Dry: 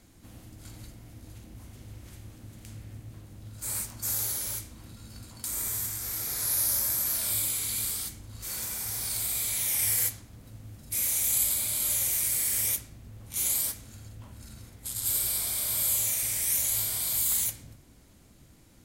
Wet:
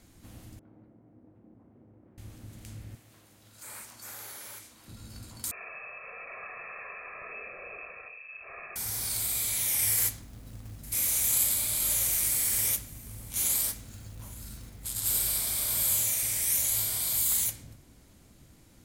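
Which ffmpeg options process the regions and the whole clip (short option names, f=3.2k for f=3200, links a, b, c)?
-filter_complex "[0:a]asettb=1/sr,asplit=3[a][b][c];[a]atrim=end=0.594[d];[b]atrim=start=0.59:end=2.18,asetpts=PTS-STARTPTS,afade=t=in:d=0.004:c=qsin,afade=t=out:st=1.586:d=0.004:c=qsin,highpass=240,lowpass=2.4k,adynamicsmooth=sensitivity=2:basefreq=660[e];[c]atrim=start=2.176[f];[d][e]acrossfade=d=0.004:c1=hsin:c2=qsin[g];[g][f]acrossfade=d=0.004:c1=qsin:c2=hsin,asettb=1/sr,asplit=3[h][i][j];[h]atrim=end=2.954[k];[i]atrim=start=2.95:end=4.88,asetpts=PTS-STARTPTS,afade=t=in:d=0.004:c=qsin,afade=t=out:st=1.926:d=0.004:c=qsin,acrossover=split=2800[l][m];[m]acompressor=threshold=-43dB:ratio=4:attack=1:release=60[n];[l][n]amix=inputs=2:normalize=0,highpass=f=750:p=1[o];[j]atrim=start=4.876[p];[k][o]acrossfade=d=0.004:c1=hsin:c2=qsin[q];[q][p]acrossfade=d=0.004:c1=qsin:c2=hsin,asettb=1/sr,asplit=3[r][s][t];[r]atrim=end=5.514[u];[s]atrim=start=5.51:end=8.76,asetpts=PTS-STARTPTS,afade=t=in:d=0.004:c=qsin,afade=t=out:st=3.246:d=0.004:c=qsin,lowpass=f=2.3k:t=q:w=0.5098,lowpass=f=2.3k:t=q:w=0.6013,lowpass=f=2.3k:t=q:w=0.9,lowpass=f=2.3k:t=q:w=2.563,afreqshift=-2700,aecho=1:1:1.7:0.87,atrim=end_sample=143325[v];[t]atrim=start=8.756[w];[u][v]acrossfade=d=0.004:c1=hsin:c2=qsin[x];[x][w]acrossfade=d=0.004:c1=qsin:c2=hsin,asettb=1/sr,asplit=3[y][z][aa];[y]atrim=end=9.974[ab];[z]atrim=start=9.97:end=16.04,asetpts=PTS-STARTPTS,afade=t=in:d=0.004:c=qsin,afade=t=out:st=6.066:d=0.004:c=qsin,acrusher=bits=3:mode=log:mix=0:aa=0.000001,aeval=exprs='val(0)+0.00316*(sin(2*PI*50*n/s)+sin(2*PI*2*50*n/s)/2+sin(2*PI*3*50*n/s)/3+sin(2*PI*4*50*n/s)/4+sin(2*PI*5*50*n/s)/5)':c=same,aecho=1:1:863:0.0794,atrim=end_sample=267687[ac];[aa]atrim=start=16.036[ad];[ab][ac]acrossfade=d=0.004:c1=hsin:c2=qsin[ae];[ae][ad]acrossfade=d=0.004:c1=qsin:c2=hsin"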